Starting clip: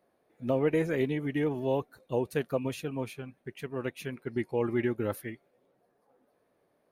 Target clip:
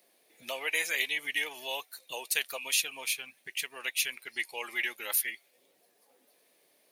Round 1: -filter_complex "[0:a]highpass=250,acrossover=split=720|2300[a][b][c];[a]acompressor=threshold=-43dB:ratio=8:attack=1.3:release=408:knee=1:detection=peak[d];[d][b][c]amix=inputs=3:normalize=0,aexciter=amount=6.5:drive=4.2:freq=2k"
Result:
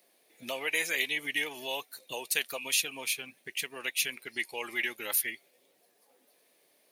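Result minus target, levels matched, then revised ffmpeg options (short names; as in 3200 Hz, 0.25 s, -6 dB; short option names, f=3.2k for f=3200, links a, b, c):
compressor: peak gain reduction -10.5 dB
-filter_complex "[0:a]highpass=250,acrossover=split=720|2300[a][b][c];[a]acompressor=threshold=-55dB:ratio=8:attack=1.3:release=408:knee=1:detection=peak[d];[d][b][c]amix=inputs=3:normalize=0,aexciter=amount=6.5:drive=4.2:freq=2k"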